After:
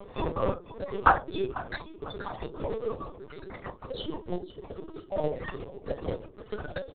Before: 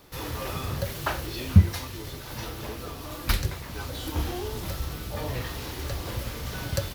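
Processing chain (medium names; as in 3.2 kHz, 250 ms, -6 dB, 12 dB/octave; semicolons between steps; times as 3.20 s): resonances exaggerated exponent 3; steep high-pass 370 Hz 36 dB/octave; band-stop 910 Hz, Q 23; in parallel at +1.5 dB: compression 8:1, threshold -51 dBFS, peak gain reduction 26 dB; on the sum: short-mantissa float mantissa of 2-bit; trance gate "xxxxx..xxxx." 141 bpm -60 dB; frequency-shifting echo 496 ms, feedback 43%, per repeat -42 Hz, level -16 dB; on a send at -4.5 dB: reverberation RT60 0.25 s, pre-delay 3 ms; on the sum: LPC vocoder at 8 kHz pitch kept; trim +8.5 dB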